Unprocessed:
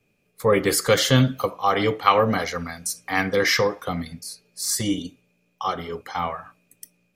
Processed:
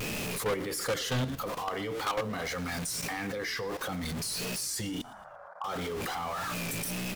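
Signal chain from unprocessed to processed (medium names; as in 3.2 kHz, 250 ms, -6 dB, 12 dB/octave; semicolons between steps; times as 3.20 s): jump at every zero crossing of -28.5 dBFS; in parallel at +1.5 dB: compression 16:1, threshold -27 dBFS, peak gain reduction 17.5 dB; 5.01–5.64 s: on the sum: elliptic band-pass 620–1500 Hz, stop band 40 dB; level held to a coarse grid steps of 14 dB; hard clipper -20 dBFS, distortion -6 dB; frequency-shifting echo 116 ms, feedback 47%, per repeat -52 Hz, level -19.5 dB; vibrato 1.6 Hz 75 cents; trim -6.5 dB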